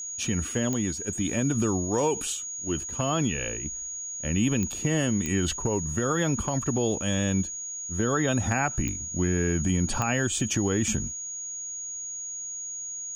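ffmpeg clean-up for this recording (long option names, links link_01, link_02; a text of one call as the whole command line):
ffmpeg -i in.wav -af "adeclick=threshold=4,bandreject=frequency=6700:width=30,agate=range=-21dB:threshold=-28dB" out.wav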